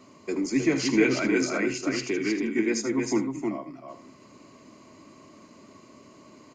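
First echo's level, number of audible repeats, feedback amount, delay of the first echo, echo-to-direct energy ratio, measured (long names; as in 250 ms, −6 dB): −12.5 dB, 3, repeats not evenly spaced, 77 ms, −3.5 dB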